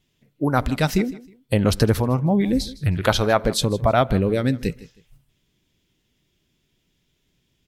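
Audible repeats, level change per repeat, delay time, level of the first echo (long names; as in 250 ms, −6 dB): 2, −11.5 dB, 158 ms, −19.0 dB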